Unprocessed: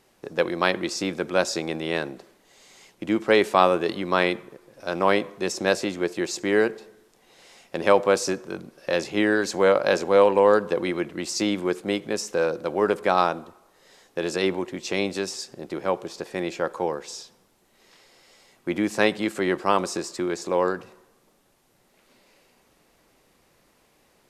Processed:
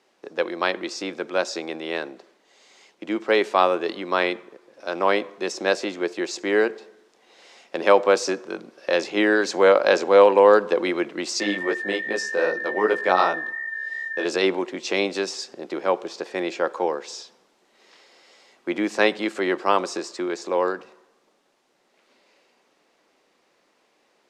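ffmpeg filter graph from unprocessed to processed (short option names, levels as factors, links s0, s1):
-filter_complex "[0:a]asettb=1/sr,asplit=3[s0][s1][s2];[s0]atrim=end=11.404[s3];[s1]atrim=start=11.4:end=14.25,asetpts=PTS-STARTPTS,afade=t=in:d=0.004:c=qsin,afade=t=out:st=2.846:d=0.004:c=qsin,aeval=exprs='val(0)+0.0355*sin(2*PI*1800*n/s)':c=same,flanger=delay=17:depth=4.9:speed=2.6[s4];[s2]atrim=start=14.246[s5];[s3][s4]acrossfade=d=0.004:c1=hsin:c2=qsin[s6];[s6][s5]acrossfade=d=0.004:c1=qsin:c2=hsin,acrossover=split=230 7300:gain=0.0631 1 0.126[s7][s8][s9];[s7][s8][s9]amix=inputs=3:normalize=0,dynaudnorm=f=280:g=31:m=3.76,volume=0.891"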